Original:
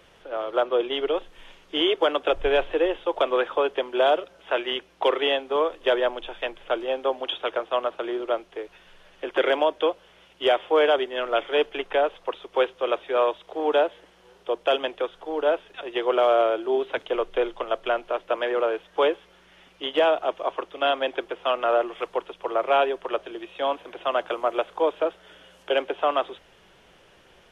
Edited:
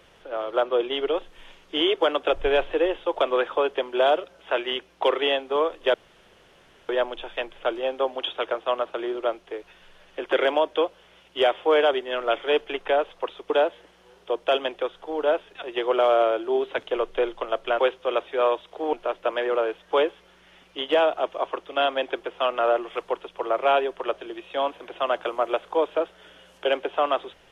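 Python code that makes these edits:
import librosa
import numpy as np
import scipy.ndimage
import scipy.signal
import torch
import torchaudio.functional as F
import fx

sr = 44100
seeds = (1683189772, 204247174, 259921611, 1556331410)

y = fx.edit(x, sr, fx.insert_room_tone(at_s=5.94, length_s=0.95),
    fx.move(start_s=12.55, length_s=1.14, to_s=17.98), tone=tone)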